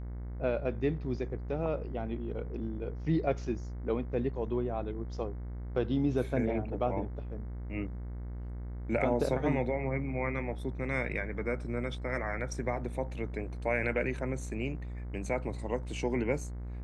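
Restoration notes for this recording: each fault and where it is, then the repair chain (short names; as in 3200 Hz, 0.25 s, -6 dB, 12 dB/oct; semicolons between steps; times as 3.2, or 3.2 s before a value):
buzz 60 Hz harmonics 37 -39 dBFS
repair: de-hum 60 Hz, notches 37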